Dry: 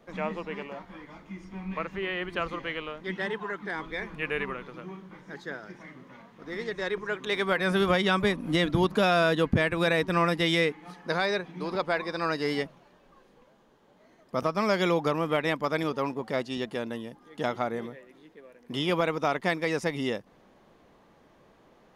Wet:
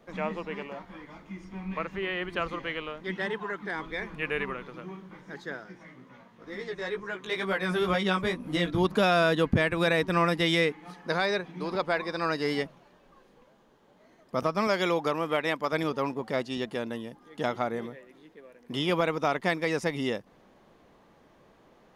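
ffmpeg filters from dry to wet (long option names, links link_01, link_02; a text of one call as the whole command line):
ffmpeg -i in.wav -filter_complex "[0:a]asettb=1/sr,asplit=3[link_01][link_02][link_03];[link_01]atrim=end=5.634[link_04];[link_02]atrim=start=5.63:end=8.85,asetpts=PTS-STARTPTS,afade=type=in:duration=0.004:curve=qsin,afade=type=out:start_time=3.216:duration=0.004:curve=qsin,flanger=delay=15:depth=2.8:speed=2.1[link_05];[link_03]atrim=start=8.846[link_06];[link_04][link_05]acrossfade=duration=0.004:curve1=hsin:curve2=qsin[link_07];[link_07][link_06]acrossfade=duration=0.004:curve1=qsin:curve2=hsin,asettb=1/sr,asplit=3[link_08][link_09][link_10];[link_08]atrim=end=14.674[link_11];[link_09]atrim=start=14.67:end=15.73,asetpts=PTS-STARTPTS,afade=type=in:duration=0.004:curve=qsin,afade=type=out:start_time=1.056:duration=0.004:curve=qsin,lowshelf=frequency=180:gain=-10.5[link_12];[link_10]atrim=start=15.726[link_13];[link_11][link_12]acrossfade=duration=0.004:curve1=hsin:curve2=qsin[link_14];[link_14][link_13]acrossfade=duration=0.004:curve1=qsin:curve2=hsin" out.wav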